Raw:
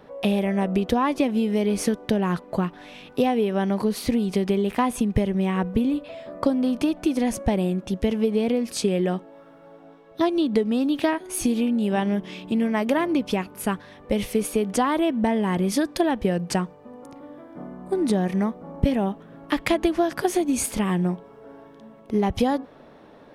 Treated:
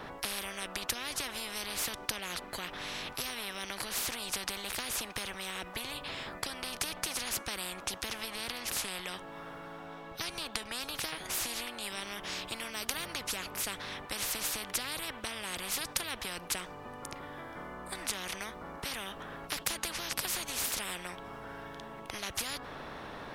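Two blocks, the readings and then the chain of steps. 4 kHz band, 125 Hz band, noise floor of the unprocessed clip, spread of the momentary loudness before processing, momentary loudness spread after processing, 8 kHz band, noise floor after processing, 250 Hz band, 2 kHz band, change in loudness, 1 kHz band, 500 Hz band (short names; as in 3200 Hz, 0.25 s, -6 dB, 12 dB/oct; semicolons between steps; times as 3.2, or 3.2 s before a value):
+1.0 dB, -21.0 dB, -49 dBFS, 7 LU, 11 LU, -0.5 dB, -47 dBFS, -26.0 dB, -3.5 dB, -12.5 dB, -12.5 dB, -20.0 dB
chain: spectral compressor 10:1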